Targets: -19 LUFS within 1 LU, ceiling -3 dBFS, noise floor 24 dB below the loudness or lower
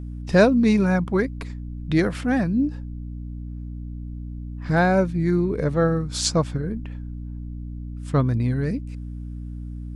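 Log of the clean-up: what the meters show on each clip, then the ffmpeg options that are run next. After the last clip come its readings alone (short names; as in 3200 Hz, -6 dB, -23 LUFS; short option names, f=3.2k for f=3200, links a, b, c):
hum 60 Hz; harmonics up to 300 Hz; hum level -31 dBFS; loudness -22.0 LUFS; peak -3.5 dBFS; loudness target -19.0 LUFS
-> -af "bandreject=f=60:t=h:w=4,bandreject=f=120:t=h:w=4,bandreject=f=180:t=h:w=4,bandreject=f=240:t=h:w=4,bandreject=f=300:t=h:w=4"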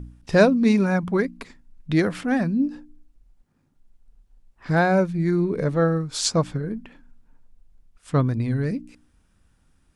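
hum none; loudness -22.5 LUFS; peak -3.0 dBFS; loudness target -19.0 LUFS
-> -af "volume=3.5dB,alimiter=limit=-3dB:level=0:latency=1"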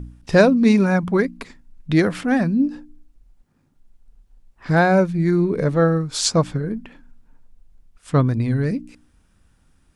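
loudness -19.0 LUFS; peak -3.0 dBFS; noise floor -61 dBFS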